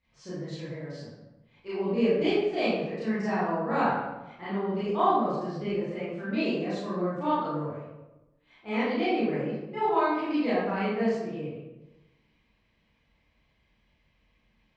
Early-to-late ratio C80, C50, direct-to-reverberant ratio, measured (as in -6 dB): 2.0 dB, -2.5 dB, -11.5 dB